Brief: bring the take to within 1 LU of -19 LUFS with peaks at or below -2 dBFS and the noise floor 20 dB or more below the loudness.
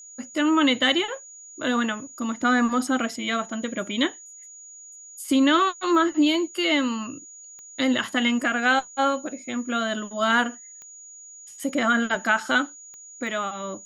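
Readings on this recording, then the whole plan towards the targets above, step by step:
clicks 5; steady tone 6800 Hz; tone level -42 dBFS; loudness -23.5 LUFS; peak -8.0 dBFS; loudness target -19.0 LUFS
-> de-click; notch 6800 Hz, Q 30; gain +4.5 dB

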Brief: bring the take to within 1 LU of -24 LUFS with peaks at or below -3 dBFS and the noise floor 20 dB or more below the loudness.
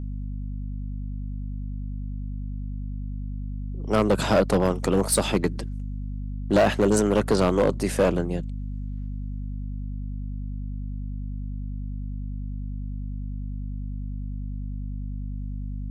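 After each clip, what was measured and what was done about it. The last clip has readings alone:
clipped 0.6%; flat tops at -13.5 dBFS; hum 50 Hz; harmonics up to 250 Hz; hum level -29 dBFS; loudness -27.5 LUFS; peak -13.5 dBFS; loudness target -24.0 LUFS
-> clip repair -13.5 dBFS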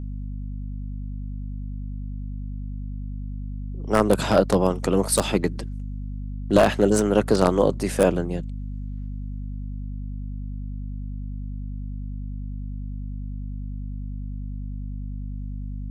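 clipped 0.0%; hum 50 Hz; harmonics up to 250 Hz; hum level -29 dBFS
-> notches 50/100/150/200/250 Hz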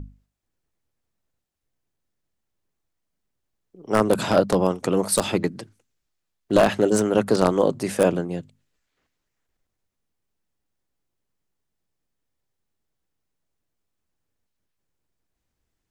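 hum none; loudness -21.5 LUFS; peak -3.5 dBFS; loudness target -24.0 LUFS
-> gain -2.5 dB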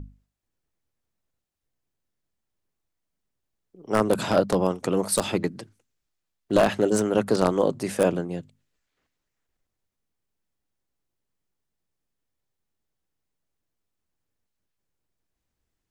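loudness -24.0 LUFS; peak -6.0 dBFS; noise floor -82 dBFS

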